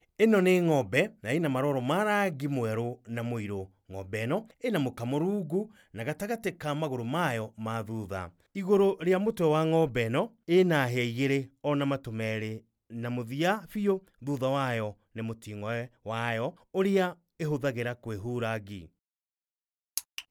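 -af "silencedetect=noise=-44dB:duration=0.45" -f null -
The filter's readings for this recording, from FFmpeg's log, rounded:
silence_start: 18.86
silence_end: 19.97 | silence_duration: 1.12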